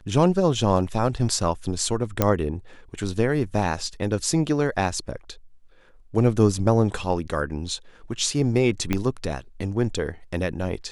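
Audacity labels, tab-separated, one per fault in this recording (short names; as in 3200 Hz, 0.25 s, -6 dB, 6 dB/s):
2.220000	2.220000	pop -5 dBFS
8.930000	8.930000	pop -9 dBFS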